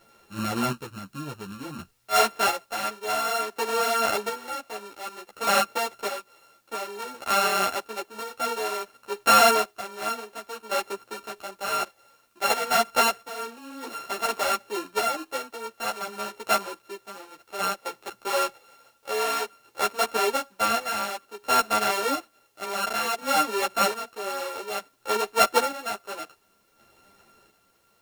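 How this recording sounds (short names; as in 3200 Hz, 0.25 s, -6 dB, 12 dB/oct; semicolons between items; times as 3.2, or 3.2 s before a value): a buzz of ramps at a fixed pitch in blocks of 32 samples; chopped level 0.56 Hz, depth 60%, duty 40%; a quantiser's noise floor 12-bit, dither triangular; a shimmering, thickened sound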